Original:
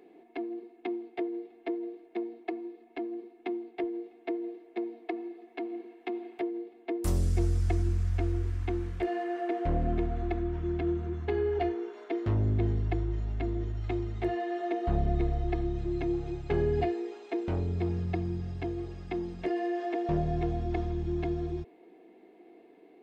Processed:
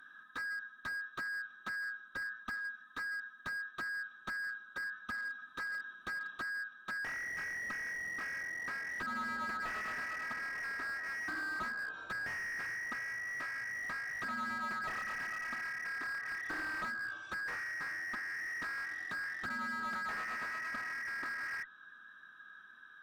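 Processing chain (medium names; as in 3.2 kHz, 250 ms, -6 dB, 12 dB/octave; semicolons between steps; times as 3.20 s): every band turned upside down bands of 2 kHz; low-pass that closes with the level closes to 1.3 kHz, closed at -27.5 dBFS; slew-rate limiter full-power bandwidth 21 Hz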